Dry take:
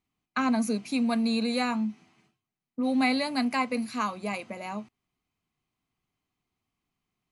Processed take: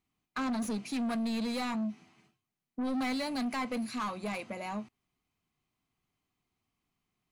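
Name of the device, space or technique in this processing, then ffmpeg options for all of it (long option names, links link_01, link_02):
saturation between pre-emphasis and de-emphasis: -af "highshelf=frequency=4900:gain=11,asoftclip=type=tanh:threshold=-29.5dB,highshelf=frequency=4900:gain=-11"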